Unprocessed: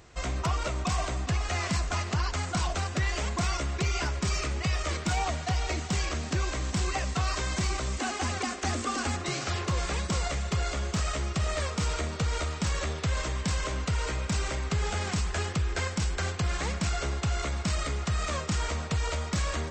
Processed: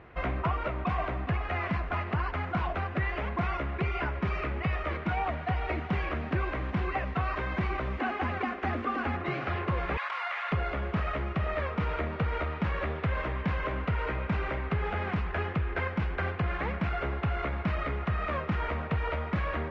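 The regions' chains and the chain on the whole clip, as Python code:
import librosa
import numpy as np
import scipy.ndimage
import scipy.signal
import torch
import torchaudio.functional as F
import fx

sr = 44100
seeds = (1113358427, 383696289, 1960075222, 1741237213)

y = fx.chain(x, sr, fx.highpass(hz=910.0, slope=24),
    fx.env_flatten(amount_pct=100), at=(9.97, 10.52))
y = scipy.signal.sosfilt(scipy.signal.butter(4, 2400.0, 'lowpass', fs=sr, output='sos'), y)
y = fx.low_shelf(y, sr, hz=82.0, db=-7.0)
y = fx.rider(y, sr, range_db=10, speed_s=0.5)
y = y * librosa.db_to_amplitude(1.5)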